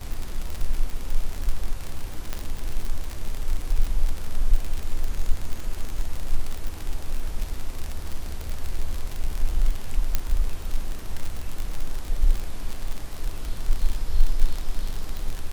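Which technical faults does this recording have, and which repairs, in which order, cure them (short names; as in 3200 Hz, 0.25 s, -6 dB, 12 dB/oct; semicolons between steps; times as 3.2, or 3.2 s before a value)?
crackle 59/s -24 dBFS
2.33 pop -13 dBFS
10.15 pop -7 dBFS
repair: de-click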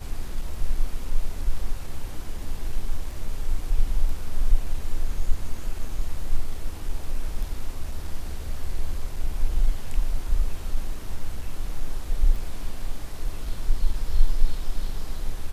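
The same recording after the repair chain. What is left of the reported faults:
none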